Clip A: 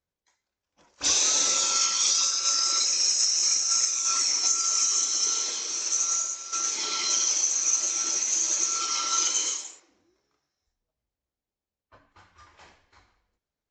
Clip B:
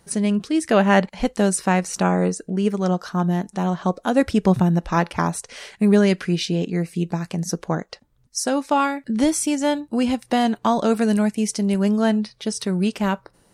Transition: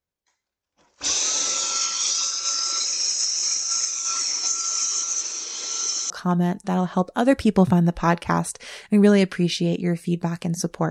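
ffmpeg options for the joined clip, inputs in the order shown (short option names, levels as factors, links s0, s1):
-filter_complex "[0:a]apad=whole_dur=10.9,atrim=end=10.9,asplit=2[s0][s1];[s0]atrim=end=5.032[s2];[s1]atrim=start=5.028:end=6.102,asetpts=PTS-STARTPTS,areverse[s3];[1:a]atrim=start=2.988:end=7.79[s4];[s2][s3]acrossfade=d=0.004:c1=hsin:c2=hsin[s5];[s5][s4]acrossfade=d=0.004:c1=hsin:c2=hsin"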